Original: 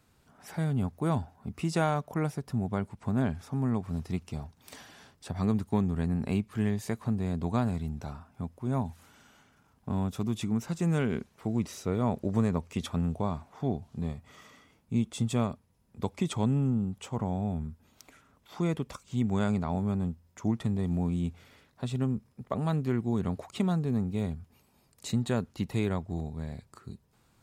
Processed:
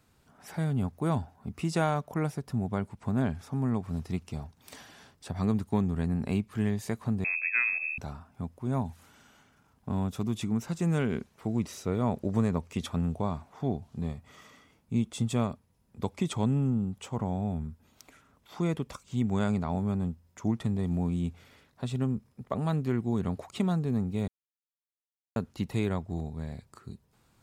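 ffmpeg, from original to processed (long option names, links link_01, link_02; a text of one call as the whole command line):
ffmpeg -i in.wav -filter_complex "[0:a]asettb=1/sr,asplit=3[link_01][link_02][link_03];[link_01]atrim=end=7.244[link_04];[link_02]atrim=start=7.24:end=7.98,asetpts=PTS-STARTPTS,afade=type=in:duration=0.004:curve=qsin,afade=type=out:start_time=0.736:duration=0.004:curve=qsin,lowpass=frequency=2300:width_type=q:width=0.5098,lowpass=frequency=2300:width_type=q:width=0.6013,lowpass=frequency=2300:width_type=q:width=0.9,lowpass=frequency=2300:width_type=q:width=2.563,afreqshift=-2700[link_05];[link_03]atrim=start=7.976[link_06];[link_04][link_05]acrossfade=duration=0.004:curve1=hsin:curve2=qsin[link_07];[link_07][link_06]acrossfade=duration=0.004:curve1=qsin:curve2=hsin,asplit=3[link_08][link_09][link_10];[link_08]atrim=end=24.28,asetpts=PTS-STARTPTS,afade=type=out:start_time=24.276:duration=0.004:curve=hsin[link_11];[link_09]atrim=start=24.28:end=25.36,asetpts=PTS-STARTPTS,volume=0[link_12];[link_10]atrim=start=25.36,asetpts=PTS-STARTPTS,afade=type=in:duration=0.004:curve=hsin[link_13];[link_11][link_12][link_13]concat=n=3:v=0:a=1" out.wav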